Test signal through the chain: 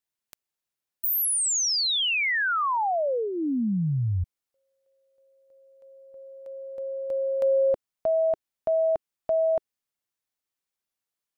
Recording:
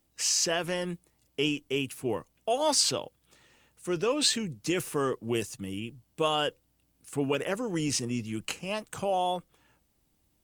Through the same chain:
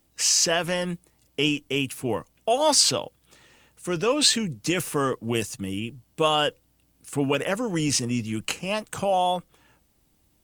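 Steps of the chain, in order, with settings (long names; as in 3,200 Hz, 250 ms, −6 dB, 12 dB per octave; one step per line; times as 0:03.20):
dynamic equaliser 380 Hz, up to −6 dB, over −44 dBFS, Q 4.1
level +6 dB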